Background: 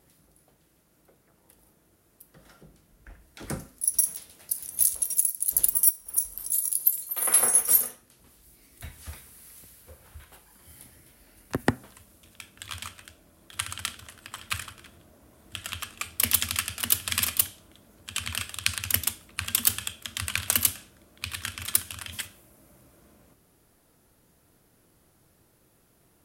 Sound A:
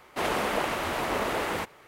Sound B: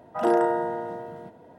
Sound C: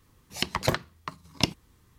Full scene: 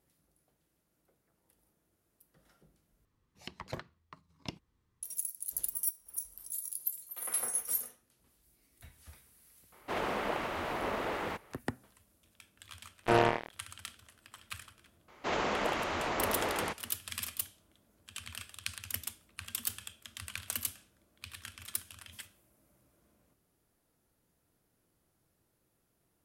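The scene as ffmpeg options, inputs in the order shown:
-filter_complex "[1:a]asplit=2[s0][s1];[0:a]volume=0.224[s2];[3:a]highshelf=f=4700:g=-8.5[s3];[s0]equalizer=f=10000:t=o:w=1.9:g=-8.5[s4];[2:a]acrusher=bits=2:mix=0:aa=0.5[s5];[s1]aresample=16000,aresample=44100[s6];[s2]asplit=2[s7][s8];[s7]atrim=end=3.054[s9];[s3]atrim=end=1.98,asetpts=PTS-STARTPTS,volume=0.168[s10];[s8]atrim=start=5.026[s11];[s4]atrim=end=1.87,asetpts=PTS-STARTPTS,volume=0.501,afade=t=in:d=0.004:c=hsin,afade=t=out:st=1.866:d=0.004:c=hsin,adelay=9720[s12];[s5]atrim=end=1.58,asetpts=PTS-STARTPTS,volume=0.631,afade=t=in:d=0.004:c=hsin,afade=t=out:st=1.576:d=0.004:c=hsin,adelay=566244S[s13];[s6]atrim=end=1.87,asetpts=PTS-STARTPTS,volume=0.596,afade=t=in:d=0.004:c=hsin,afade=t=out:st=1.866:d=0.004:c=hsin,adelay=665028S[s14];[s9][s10]acrossfade=d=0.004:c1=hsin:c2=hsin[s15];[s15][s11]acrossfade=d=0.004:c1=hsin:c2=hsin[s16];[s16][s12][s13][s14]amix=inputs=4:normalize=0"

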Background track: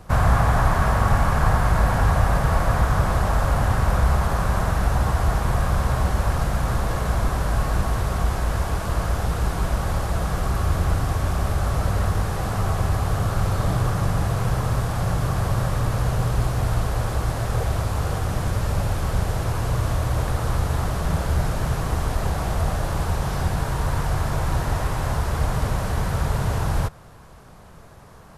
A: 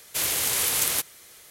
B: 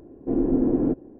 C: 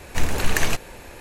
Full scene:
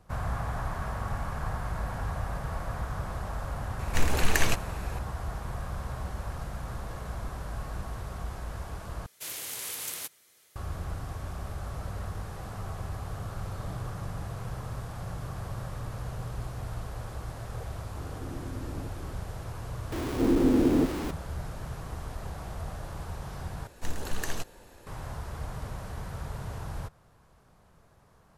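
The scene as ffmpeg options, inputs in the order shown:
-filter_complex "[3:a]asplit=2[s0][s1];[2:a]asplit=2[s2][s3];[0:a]volume=0.188[s4];[1:a]highpass=88[s5];[s2]acompressor=threshold=0.0112:ratio=6:attack=3.2:release=140:knee=1:detection=peak[s6];[s3]aeval=exprs='val(0)+0.5*0.0501*sgn(val(0))':c=same[s7];[s1]equalizer=f=2300:w=3:g=-9[s8];[s4]asplit=3[s9][s10][s11];[s9]atrim=end=9.064[s12];[s5]atrim=end=1.5,asetpts=PTS-STARTPTS,volume=0.237[s13];[s10]atrim=start=10.556:end=23.674[s14];[s8]atrim=end=1.2,asetpts=PTS-STARTPTS,volume=0.282[s15];[s11]atrim=start=24.866[s16];[s0]atrim=end=1.2,asetpts=PTS-STARTPTS,volume=0.668,afade=t=in:d=0.004:c=hsin,afade=t=out:st=1.196:d=0.004:c=hsin,adelay=3790[s17];[s6]atrim=end=1.19,asetpts=PTS-STARTPTS,volume=0.75,afade=t=in:d=0.004:c=hsin,afade=t=out:st=1.186:d=0.004:c=hsin,adelay=17950[s18];[s7]atrim=end=1.19,asetpts=PTS-STARTPTS,volume=0.708,afade=t=in:d=0.004:c=hsin,afade=t=out:st=1.186:d=0.004:c=hsin,adelay=19920[s19];[s12][s13]acrossfade=d=0.004:c1=hsin:c2=hsin[s20];[s20][s14]acrossfade=d=0.004:c1=hsin:c2=hsin[s21];[s21][s15]acrossfade=d=0.004:c1=hsin:c2=hsin[s22];[s22][s16]acrossfade=d=0.004:c1=hsin:c2=hsin[s23];[s23][s17][s18][s19]amix=inputs=4:normalize=0"

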